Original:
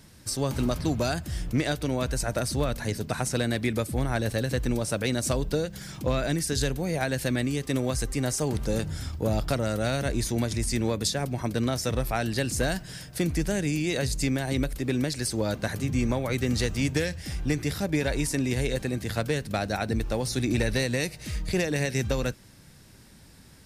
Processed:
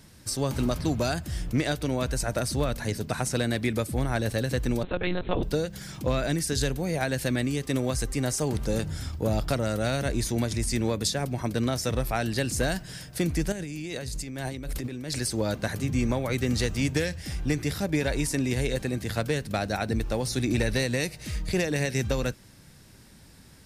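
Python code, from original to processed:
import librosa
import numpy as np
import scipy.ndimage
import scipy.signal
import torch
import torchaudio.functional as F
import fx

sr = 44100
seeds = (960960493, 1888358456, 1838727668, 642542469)

y = fx.lpc_monotone(x, sr, seeds[0], pitch_hz=180.0, order=10, at=(4.83, 5.43))
y = fx.over_compress(y, sr, threshold_db=-34.0, ratio=-1.0, at=(13.52, 15.19))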